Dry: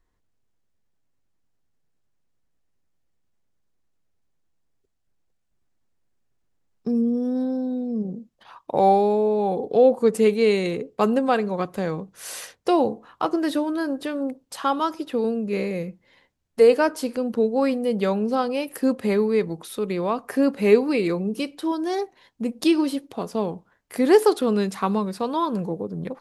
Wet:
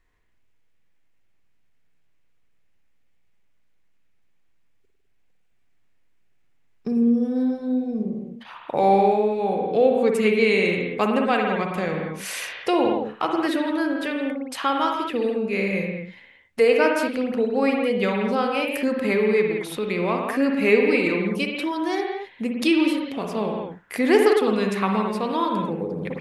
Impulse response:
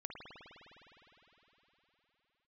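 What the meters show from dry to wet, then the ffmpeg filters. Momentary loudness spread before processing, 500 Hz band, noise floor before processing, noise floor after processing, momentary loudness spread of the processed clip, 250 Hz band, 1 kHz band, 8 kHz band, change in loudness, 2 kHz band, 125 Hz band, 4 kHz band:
12 LU, 0.0 dB, -70 dBFS, -60 dBFS, 11 LU, +0.5 dB, +1.0 dB, -0.5 dB, +0.5 dB, +7.5 dB, +0.5 dB, +3.5 dB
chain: -filter_complex "[1:a]atrim=start_sample=2205,afade=t=out:st=0.28:d=0.01,atrim=end_sample=12789[a];[0:a][a]afir=irnorm=-1:irlink=0,asplit=2[b][c];[c]acompressor=threshold=-36dB:ratio=6,volume=-2dB[d];[b][d]amix=inputs=2:normalize=0,equalizer=f=2.3k:w=1.4:g=10.5,volume=1.5dB"

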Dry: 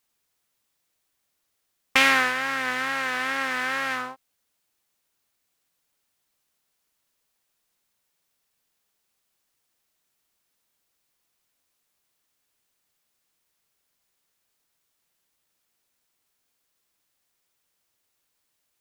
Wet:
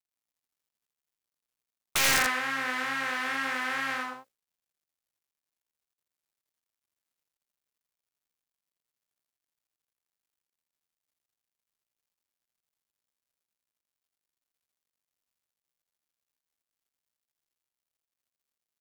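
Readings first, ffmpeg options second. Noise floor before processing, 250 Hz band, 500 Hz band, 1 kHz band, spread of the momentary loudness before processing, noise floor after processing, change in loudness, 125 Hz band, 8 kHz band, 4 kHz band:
-76 dBFS, -5.0 dB, -5.5 dB, -4.5 dB, 10 LU, under -85 dBFS, -4.0 dB, +1.5 dB, +4.5 dB, -3.0 dB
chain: -af "bandreject=f=60:t=h:w=6,bandreject=f=120:t=h:w=6,bandreject=f=180:t=h:w=6,bandreject=f=240:t=h:w=6,bandreject=f=300:t=h:w=6,bandreject=f=360:t=h:w=6,bandreject=f=420:t=h:w=6,bandreject=f=480:t=h:w=6,bandreject=f=540:t=h:w=6,bandreject=f=600:t=h:w=6,acrusher=bits=10:mix=0:aa=0.000001,aeval=exprs='(mod(2.51*val(0)+1,2)-1)/2.51':c=same,aecho=1:1:82:0.708,volume=-5.5dB"

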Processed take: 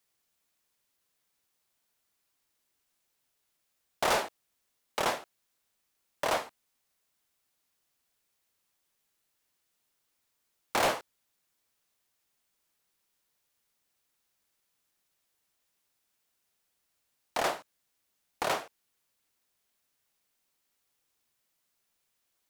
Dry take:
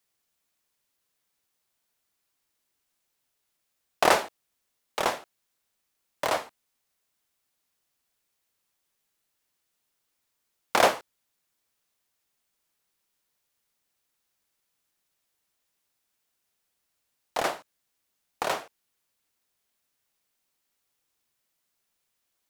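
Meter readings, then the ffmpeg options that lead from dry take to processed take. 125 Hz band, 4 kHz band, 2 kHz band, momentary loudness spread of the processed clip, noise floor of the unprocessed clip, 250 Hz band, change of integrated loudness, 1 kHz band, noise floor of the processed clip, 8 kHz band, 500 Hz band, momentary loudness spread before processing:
-1.5 dB, -3.0 dB, -4.5 dB, 13 LU, -79 dBFS, -4.0 dB, -5.0 dB, -4.5 dB, -79 dBFS, -3.0 dB, -5.0 dB, 16 LU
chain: -af "volume=23dB,asoftclip=hard,volume=-23dB"

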